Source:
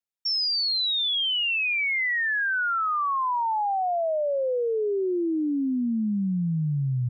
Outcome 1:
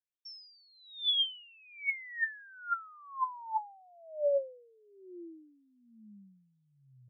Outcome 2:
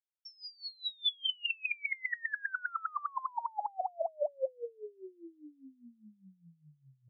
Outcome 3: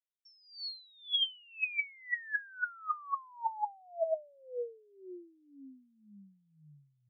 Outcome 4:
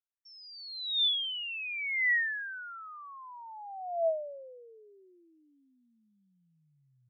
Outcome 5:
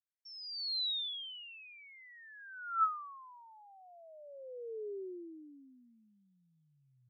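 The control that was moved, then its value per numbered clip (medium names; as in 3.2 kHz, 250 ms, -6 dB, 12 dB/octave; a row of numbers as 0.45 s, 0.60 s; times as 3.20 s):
wah-wah, rate: 1.1 Hz, 4.9 Hz, 1.9 Hz, 0.21 Hz, 0.35 Hz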